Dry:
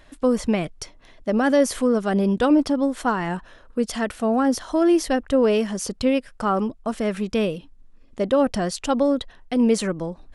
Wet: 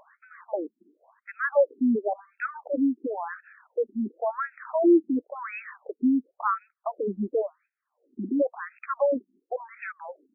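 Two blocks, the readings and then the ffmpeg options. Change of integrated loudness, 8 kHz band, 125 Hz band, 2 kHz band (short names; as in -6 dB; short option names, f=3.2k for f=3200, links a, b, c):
-6.0 dB, under -40 dB, under -15 dB, -4.0 dB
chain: -af "acompressor=mode=upward:threshold=-41dB:ratio=2.5,afftfilt=real='re*between(b*sr/1024,260*pow(1900/260,0.5+0.5*sin(2*PI*0.94*pts/sr))/1.41,260*pow(1900/260,0.5+0.5*sin(2*PI*0.94*pts/sr))*1.41)':imag='im*between(b*sr/1024,260*pow(1900/260,0.5+0.5*sin(2*PI*0.94*pts/sr))/1.41,260*pow(1900/260,0.5+0.5*sin(2*PI*0.94*pts/sr))*1.41)':win_size=1024:overlap=0.75"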